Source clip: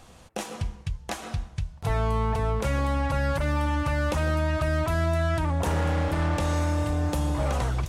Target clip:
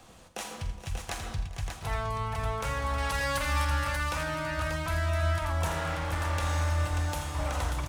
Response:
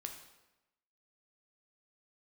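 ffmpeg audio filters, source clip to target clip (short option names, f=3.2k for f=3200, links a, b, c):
-filter_complex "[0:a]asettb=1/sr,asplit=3[a][b][c];[a]atrim=end=2.984[d];[b]atrim=start=2.98:end=3.65,asetpts=PTS-STARTPTS,afade=t=in:d=0.004:c=qsin,afade=t=out:st=0.666:d=0.004:c=qsin,highshelf=f=2.4k:g=10.5[e];[c]atrim=start=3.646[f];[d][e]acrossfade=d=0.004:c1=hsin:c2=qsin[g];[g][f]acrossfade=d=0.004:c1=qsin:c2=hsin,acrossover=split=120|770|5300[h][i][j][k];[h]flanger=delay=19:depth=5.7:speed=0.67[l];[i]acompressor=threshold=-42dB:ratio=6[m];[k]acrusher=bits=2:mode=log:mix=0:aa=0.000001[n];[l][m][j][n]amix=inputs=4:normalize=0,aecho=1:1:45|83|417|472|587:0.282|0.316|0.106|0.335|0.501,volume=-2dB"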